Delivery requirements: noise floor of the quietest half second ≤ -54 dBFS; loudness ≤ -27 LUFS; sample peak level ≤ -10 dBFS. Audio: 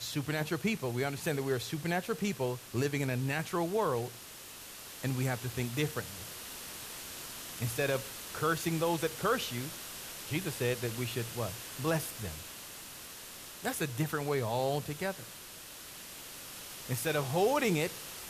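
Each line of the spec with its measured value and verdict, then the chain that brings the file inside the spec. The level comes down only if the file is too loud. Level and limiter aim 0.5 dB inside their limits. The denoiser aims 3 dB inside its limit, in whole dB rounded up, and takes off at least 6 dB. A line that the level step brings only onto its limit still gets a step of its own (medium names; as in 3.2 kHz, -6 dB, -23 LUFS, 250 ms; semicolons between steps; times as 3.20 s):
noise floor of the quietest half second -48 dBFS: fail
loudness -34.5 LUFS: pass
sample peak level -17.5 dBFS: pass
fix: noise reduction 9 dB, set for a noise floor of -48 dBFS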